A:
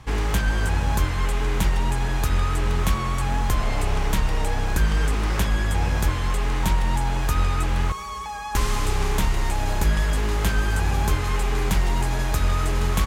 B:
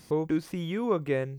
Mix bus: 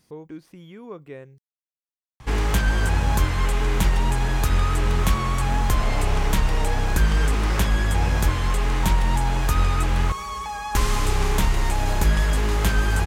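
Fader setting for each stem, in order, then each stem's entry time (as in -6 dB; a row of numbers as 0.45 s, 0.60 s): +1.5 dB, -11.0 dB; 2.20 s, 0.00 s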